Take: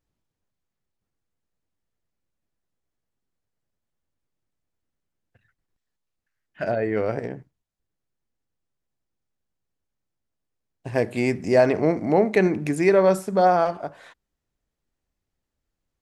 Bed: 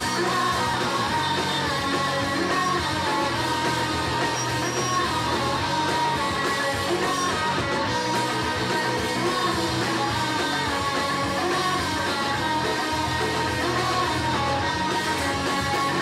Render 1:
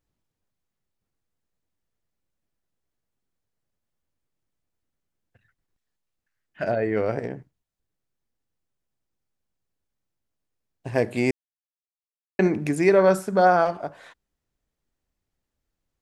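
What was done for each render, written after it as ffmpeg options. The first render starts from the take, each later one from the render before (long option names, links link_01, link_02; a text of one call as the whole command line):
ffmpeg -i in.wav -filter_complex "[0:a]asettb=1/sr,asplit=3[link_01][link_02][link_03];[link_01]atrim=end=12.994[link_04];[link_02]atrim=start=12.99:end=13.62,asetpts=PTS-STARTPTS,afade=type=in:duration=0.004:curve=qsin,afade=type=out:start_time=0.626:duration=0.004:curve=qsin,equalizer=frequency=1500:width=6.1:gain=8.5[link_05];[link_03]atrim=start=13.616[link_06];[link_04][link_05]acrossfade=duration=0.004:curve1=hsin:curve2=qsin[link_07];[link_07][link_06]acrossfade=duration=0.004:curve1=qsin:curve2=hsin,asplit=3[link_08][link_09][link_10];[link_08]atrim=end=11.31,asetpts=PTS-STARTPTS,afade=type=out:start_time=11.306:duration=0.004:curve=hsin[link_11];[link_09]atrim=start=11.31:end=12.39,asetpts=PTS-STARTPTS,volume=0[link_12];[link_10]atrim=start=12.39,asetpts=PTS-STARTPTS,afade=type=in:duration=0.004:curve=hsin[link_13];[link_11][link_12][link_13]concat=n=3:v=0:a=1" out.wav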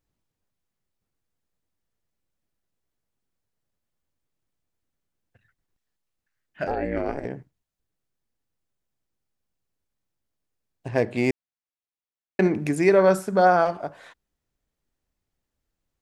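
ffmpeg -i in.wav -filter_complex "[0:a]asettb=1/sr,asplit=3[link_01][link_02][link_03];[link_01]atrim=end=6.674[link_04];[link_02]atrim=start=6.67:end=7.25,asetpts=PTS-STARTPTS,afade=type=in:duration=0.004:curve=qsin,afade=type=out:start_time=0.576:duration=0.004:curve=qsin,aeval=exprs='val(0)*sin(2*PI*140*n/s)':channel_layout=same[link_05];[link_03]atrim=start=7.246[link_06];[link_04][link_05]acrossfade=duration=0.004:curve1=hsin:curve2=qsin[link_07];[link_07][link_06]acrossfade=duration=0.004:curve1=qsin:curve2=hsin,asettb=1/sr,asplit=3[link_08][link_09][link_10];[link_08]atrim=end=10.884[link_11];[link_09]atrim=start=10.88:end=12.55,asetpts=PTS-STARTPTS,afade=type=in:duration=0.004:curve=qsin,afade=type=out:start_time=1.666:duration=0.004:curve=qsin,adynamicsmooth=sensitivity=6:basefreq=5000[link_12];[link_10]atrim=start=12.546[link_13];[link_11][link_12]acrossfade=duration=0.004:curve1=hsin:curve2=qsin[link_14];[link_14][link_13]acrossfade=duration=0.004:curve1=qsin:curve2=hsin" out.wav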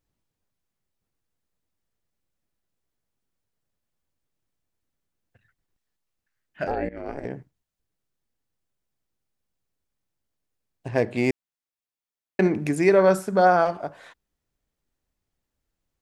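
ffmpeg -i in.wav -filter_complex "[0:a]asplit=2[link_01][link_02];[link_01]atrim=end=6.89,asetpts=PTS-STARTPTS,afade=type=out:start_time=6.886:duration=0.004:curve=hsin:silence=0.112202[link_03];[link_02]atrim=start=6.89,asetpts=PTS-STARTPTS,afade=type=in:duration=0.41:silence=0.112202[link_04];[link_03][link_04]concat=n=2:v=0:a=1" out.wav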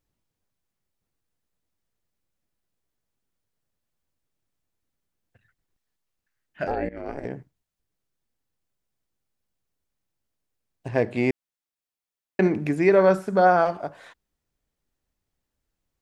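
ffmpeg -i in.wav -filter_complex "[0:a]acrossover=split=3900[link_01][link_02];[link_02]acompressor=threshold=-50dB:ratio=4:attack=1:release=60[link_03];[link_01][link_03]amix=inputs=2:normalize=0" out.wav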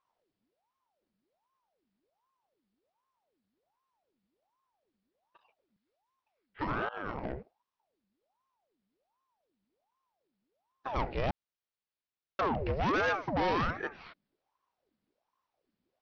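ffmpeg -i in.wav -af "aresample=11025,asoftclip=type=tanh:threshold=-24dB,aresample=44100,aeval=exprs='val(0)*sin(2*PI*630*n/s+630*0.7/1.3*sin(2*PI*1.3*n/s))':channel_layout=same" out.wav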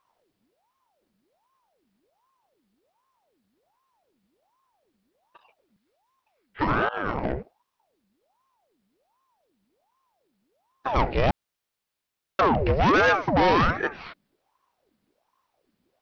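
ffmpeg -i in.wav -af "volume=10dB" out.wav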